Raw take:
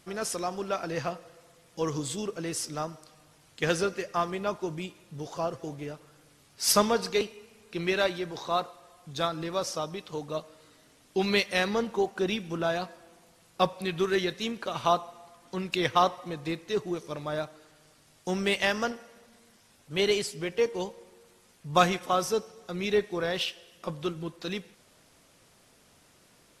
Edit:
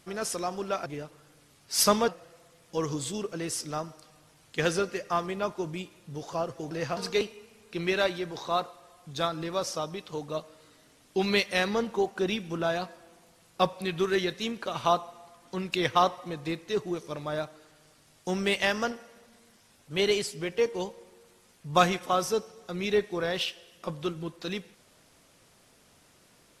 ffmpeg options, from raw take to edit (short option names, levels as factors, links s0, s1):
-filter_complex "[0:a]asplit=5[s0][s1][s2][s3][s4];[s0]atrim=end=0.862[s5];[s1]atrim=start=5.748:end=6.972[s6];[s2]atrim=start=1.118:end=5.752[s7];[s3]atrim=start=0.858:end=1.122[s8];[s4]atrim=start=6.968[s9];[s5][s6]acrossfade=d=0.004:c1=hsin:c2=hsin[s10];[s10][s7]acrossfade=d=0.004:c1=hsin:c2=hsin[s11];[s11][s8]acrossfade=d=0.004:c1=hsin:c2=hsin[s12];[s12][s9]acrossfade=d=0.004:c1=hsin:c2=hsin"